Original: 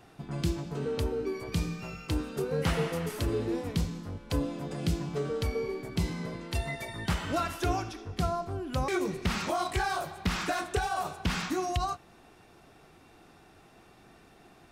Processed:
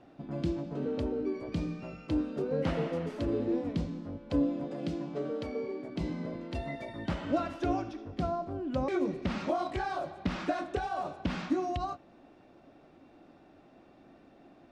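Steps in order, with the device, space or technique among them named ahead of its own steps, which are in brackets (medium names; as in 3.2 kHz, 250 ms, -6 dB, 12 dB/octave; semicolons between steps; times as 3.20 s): inside a cardboard box (low-pass 4.5 kHz 12 dB/octave; small resonant body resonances 280/560 Hz, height 13 dB, ringing for 25 ms); 4.64–6.01 s: high-pass 220 Hz 6 dB/octave; trim -7.5 dB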